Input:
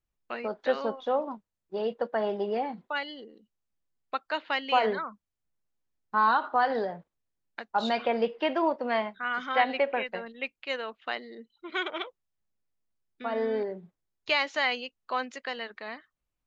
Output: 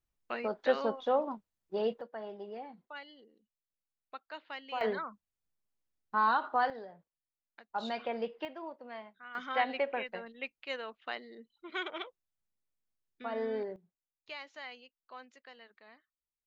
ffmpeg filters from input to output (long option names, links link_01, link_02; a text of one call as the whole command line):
ffmpeg -i in.wav -af "asetnsamples=nb_out_samples=441:pad=0,asendcmd='2.01 volume volume -14dB;4.81 volume volume -4.5dB;6.7 volume volume -16dB;7.7 volume volume -9dB;8.45 volume volume -17.5dB;9.35 volume volume -6dB;13.76 volume volume -18.5dB',volume=-1.5dB" out.wav